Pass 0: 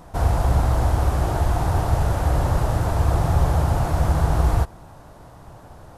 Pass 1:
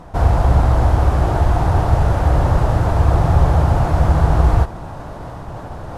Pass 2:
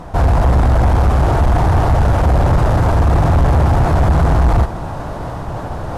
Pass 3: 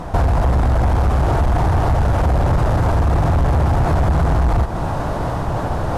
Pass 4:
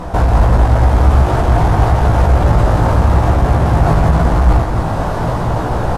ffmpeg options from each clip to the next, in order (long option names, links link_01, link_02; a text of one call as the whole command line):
ffmpeg -i in.wav -af "aemphasis=mode=reproduction:type=50kf,areverse,acompressor=mode=upward:threshold=-26dB:ratio=2.5,areverse,volume=5.5dB" out.wav
ffmpeg -i in.wav -af "apsyclip=6.5dB,asoftclip=type=tanh:threshold=-7.5dB" out.wav
ffmpeg -i in.wav -af "acompressor=threshold=-17dB:ratio=6,volume=3.5dB" out.wav
ffmpeg -i in.wav -af "flanger=delay=16:depth=2.8:speed=0.9,aecho=1:1:172:0.501,volume=6.5dB" out.wav